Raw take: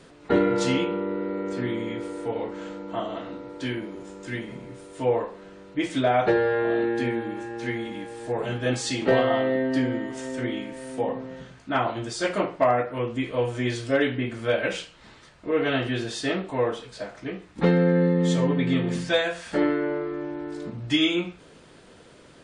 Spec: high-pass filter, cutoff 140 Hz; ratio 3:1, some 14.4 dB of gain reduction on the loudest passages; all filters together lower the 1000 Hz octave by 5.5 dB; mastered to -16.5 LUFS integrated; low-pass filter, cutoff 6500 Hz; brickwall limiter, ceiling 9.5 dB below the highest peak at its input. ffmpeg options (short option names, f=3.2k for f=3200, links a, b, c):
-af "highpass=140,lowpass=6.5k,equalizer=f=1k:t=o:g=-8.5,acompressor=threshold=-38dB:ratio=3,volume=24.5dB,alimiter=limit=-7.5dB:level=0:latency=1"